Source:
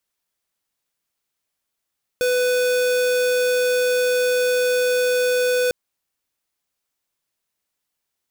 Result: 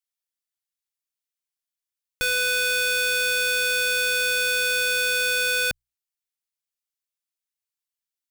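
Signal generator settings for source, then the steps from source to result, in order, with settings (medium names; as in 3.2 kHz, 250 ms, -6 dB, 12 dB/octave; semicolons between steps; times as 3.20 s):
tone square 498 Hz -19 dBFS 3.50 s
amplifier tone stack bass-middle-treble 10-0-10; hum notches 60/120 Hz; waveshaping leveller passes 5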